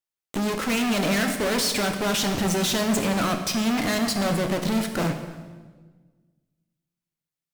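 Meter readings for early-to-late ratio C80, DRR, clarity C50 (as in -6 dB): 9.0 dB, 4.5 dB, 7.5 dB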